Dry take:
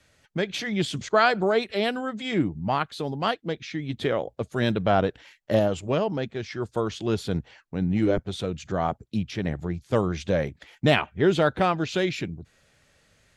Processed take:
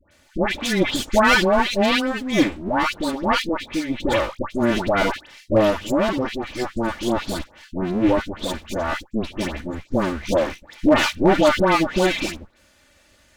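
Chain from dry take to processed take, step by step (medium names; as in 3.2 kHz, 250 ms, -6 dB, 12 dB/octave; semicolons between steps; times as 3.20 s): comb filter that takes the minimum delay 3.4 ms; phase dispersion highs, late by 113 ms, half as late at 1.3 kHz; hard clipper -15 dBFS, distortion -26 dB; trim +7.5 dB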